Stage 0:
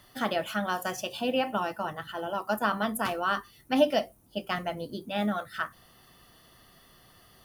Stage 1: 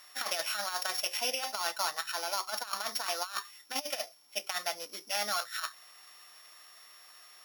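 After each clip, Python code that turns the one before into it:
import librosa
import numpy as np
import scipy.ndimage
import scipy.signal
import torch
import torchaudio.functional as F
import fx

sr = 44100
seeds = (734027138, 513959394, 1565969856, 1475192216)

y = np.r_[np.sort(x[:len(x) // 8 * 8].reshape(-1, 8), axis=1).ravel(), x[len(x) // 8 * 8:]]
y = scipy.signal.sosfilt(scipy.signal.butter(2, 1100.0, 'highpass', fs=sr, output='sos'), y)
y = fx.over_compress(y, sr, threshold_db=-35.0, ratio=-0.5)
y = y * 10.0 ** (2.5 / 20.0)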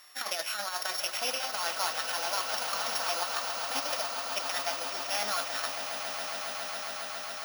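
y = fx.echo_swell(x, sr, ms=137, loudest=8, wet_db=-11)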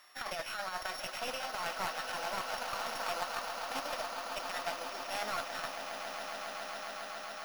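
y = fx.self_delay(x, sr, depth_ms=0.14)
y = fx.high_shelf(y, sr, hz=3500.0, db=-9.5)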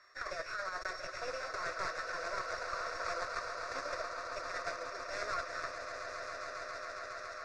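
y = fx.block_float(x, sr, bits=3)
y = scipy.signal.sosfilt(scipy.signal.butter(4, 5500.0, 'lowpass', fs=sr, output='sos'), y)
y = fx.fixed_phaser(y, sr, hz=830.0, stages=6)
y = y * 10.0 ** (2.0 / 20.0)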